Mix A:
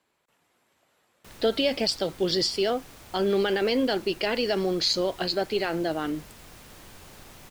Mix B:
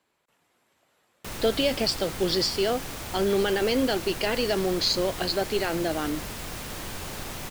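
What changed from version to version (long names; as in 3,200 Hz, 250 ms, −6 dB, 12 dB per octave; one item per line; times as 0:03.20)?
background +12.0 dB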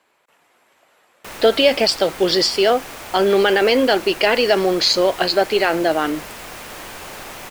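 background −7.0 dB
master: add drawn EQ curve 120 Hz 0 dB, 630 Hz +12 dB, 2,500 Hz +12 dB, 3,700 Hz +8 dB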